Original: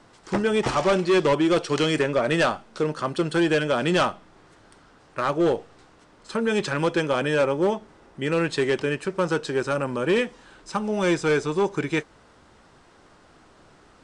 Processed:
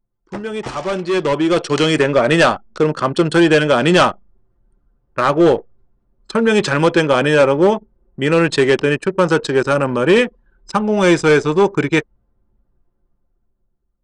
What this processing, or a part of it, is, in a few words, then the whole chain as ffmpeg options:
voice memo with heavy noise removal: -af "anlmdn=2.51,dynaudnorm=f=430:g=7:m=15dB,volume=-3.5dB"

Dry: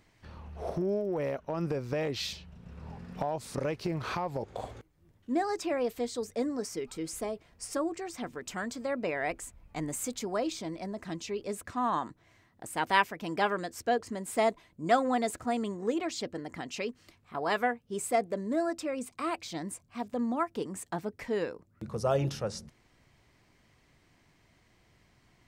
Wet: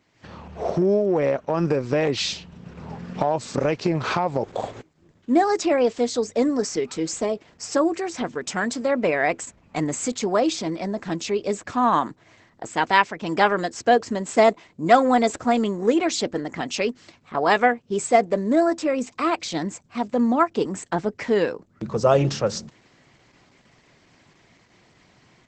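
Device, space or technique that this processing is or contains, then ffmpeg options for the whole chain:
video call: -af "highpass=130,dynaudnorm=f=120:g=3:m=10.5dB,volume=1dB" -ar 48000 -c:a libopus -b:a 12k

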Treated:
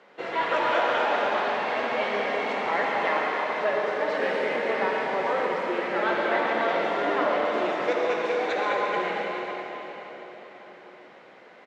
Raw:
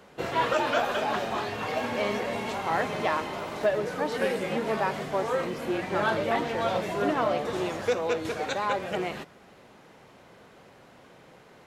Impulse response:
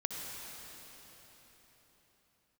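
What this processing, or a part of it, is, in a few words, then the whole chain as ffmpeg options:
station announcement: -filter_complex "[0:a]highpass=340,lowpass=3.9k,equalizer=f=2k:t=o:w=0.33:g=5,aecho=1:1:139.9|233.2:0.282|0.251[a];[1:a]atrim=start_sample=2205[b];[a][b]afir=irnorm=-1:irlink=0"

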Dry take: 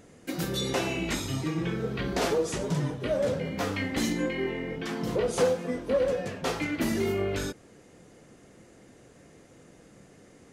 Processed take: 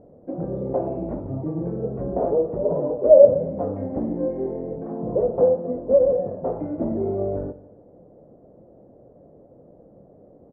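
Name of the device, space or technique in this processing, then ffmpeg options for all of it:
under water: -filter_complex "[0:a]asettb=1/sr,asplit=3[a][b][c];[a]atrim=end=2.654[d];[b]atrim=start=2.65:end=3.25,asetpts=PTS-STARTPTS,afade=t=in:d=0.004:c=qsin,afade=t=out:st=0.596:d=0.004:c=qsin,equalizer=f=125:t=o:w=1:g=-12,equalizer=f=500:t=o:w=1:g=9,equalizer=f=1k:t=o:w=1:g=4[e];[c]atrim=start=3.246[f];[d][e]acrossfade=d=0.004:c1=hsin:c2=qsin[g];[g][f]acrossfade=d=0.004:c1=qsin:c2=hsin,lowpass=f=790:w=0.5412,lowpass=f=790:w=1.3066,equalizer=f=590:t=o:w=0.54:g=9,aecho=1:1:152|304|456:0.133|0.0427|0.0137,volume=2dB"

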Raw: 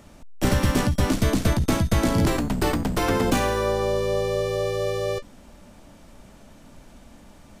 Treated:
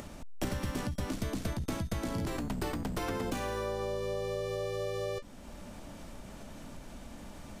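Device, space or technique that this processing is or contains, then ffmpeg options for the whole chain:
upward and downward compression: -af "acompressor=mode=upward:threshold=-37dB:ratio=2.5,acompressor=threshold=-30dB:ratio=6,volume=-2dB"

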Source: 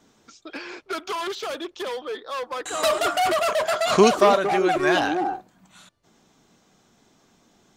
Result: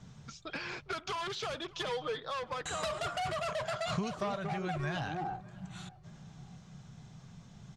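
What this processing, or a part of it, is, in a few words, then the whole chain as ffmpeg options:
jukebox: -filter_complex "[0:a]lowpass=7.5k,lowshelf=f=210:t=q:w=3:g=12.5,acompressor=threshold=-36dB:ratio=4,asettb=1/sr,asplit=3[a][b][c];[a]atrim=end=1.704[d];[b]atrim=start=1.7:end=2.2,asetpts=PTS-STARTPTS,afade=t=in:d=0.004:c=qsin,afade=t=out:st=0.496:d=0.004:c=qsin,aecho=1:1:6.4:0.66,atrim=end_sample=22050[e];[c]atrim=start=2.196[f];[d][e]acrossfade=d=0.004:c1=hsin:c2=qsin[g];[g][f]acrossfade=d=0.004:c1=qsin:c2=hsin,asplit=2[h][i];[i]adelay=608,lowpass=f=3.2k:p=1,volume=-22dB,asplit=2[j][k];[k]adelay=608,lowpass=f=3.2k:p=1,volume=0.45,asplit=2[l][m];[m]adelay=608,lowpass=f=3.2k:p=1,volume=0.45[n];[h][j][l][n]amix=inputs=4:normalize=0"

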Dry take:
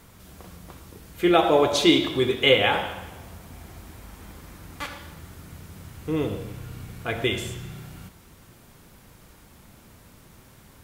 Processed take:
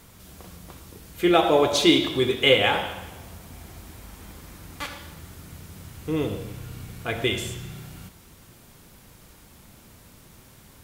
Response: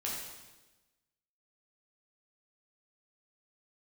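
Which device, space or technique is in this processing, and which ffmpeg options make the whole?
exciter from parts: -filter_complex "[0:a]asplit=2[a][b];[b]highpass=2.1k,asoftclip=type=tanh:threshold=-27.5dB,volume=-7.5dB[c];[a][c]amix=inputs=2:normalize=0"

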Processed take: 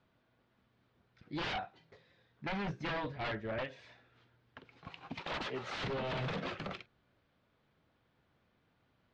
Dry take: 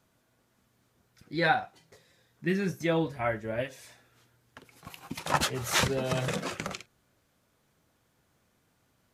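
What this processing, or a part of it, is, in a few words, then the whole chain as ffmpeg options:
synthesiser wavefolder: -filter_complex "[0:a]asettb=1/sr,asplit=3[a][b][c];[a]atrim=end=5.214[d];[b]atrim=start=5.21:end=5.77,asetpts=PTS-STARTPTS,afade=t=in:d=0.004:c=qsin,afade=t=out:st=0.556:d=0.004:c=qsin,highpass=230[e];[c]atrim=start=5.766[f];[d][e]acrossfade=d=0.004:c1=hsin:c2=qsin[g];[g][f]acrossfade=d=0.004:c1=qsin:c2=hsin,aeval=exprs='0.0376*(abs(mod(val(0)/0.0376+3,4)-2)-1)':c=same,lowpass=f=4k:w=0.5412,lowpass=f=4k:w=1.3066,volume=-3dB"

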